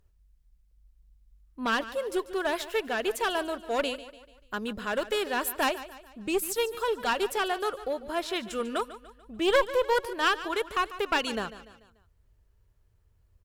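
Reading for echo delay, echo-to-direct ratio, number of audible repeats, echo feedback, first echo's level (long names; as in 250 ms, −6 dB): 146 ms, −14.0 dB, 3, 46%, −15.0 dB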